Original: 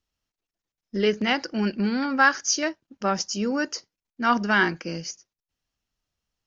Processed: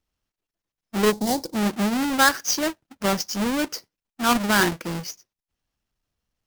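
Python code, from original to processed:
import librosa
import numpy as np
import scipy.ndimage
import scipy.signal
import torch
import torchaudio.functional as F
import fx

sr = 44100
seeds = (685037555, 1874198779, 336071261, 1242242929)

y = fx.halfwave_hold(x, sr)
y = fx.band_shelf(y, sr, hz=1900.0, db=-16.0, octaves=1.7, at=(1.11, 1.54), fade=0.02)
y = y * librosa.db_to_amplitude(-2.5)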